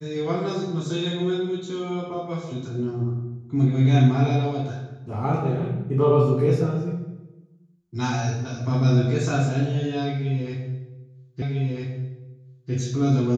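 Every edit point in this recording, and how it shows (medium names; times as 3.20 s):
11.42 s: repeat of the last 1.3 s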